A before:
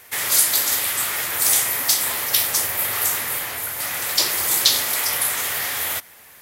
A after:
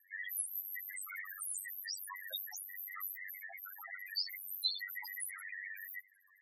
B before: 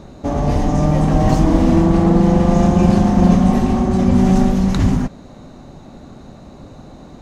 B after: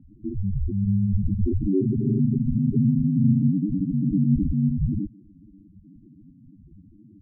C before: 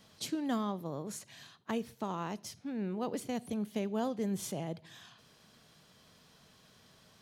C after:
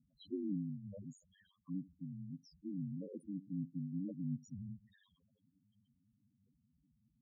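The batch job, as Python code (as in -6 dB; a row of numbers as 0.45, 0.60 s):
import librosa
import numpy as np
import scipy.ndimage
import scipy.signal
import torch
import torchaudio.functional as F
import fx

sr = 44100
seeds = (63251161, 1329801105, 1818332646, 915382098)

y = fx.spec_topn(x, sr, count=1)
y = y * np.sin(2.0 * np.pi * 48.0 * np.arange(len(y)) / sr)
y = y * librosa.db_to_amplitude(3.0)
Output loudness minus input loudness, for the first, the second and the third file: -22.0, -8.5, -7.0 LU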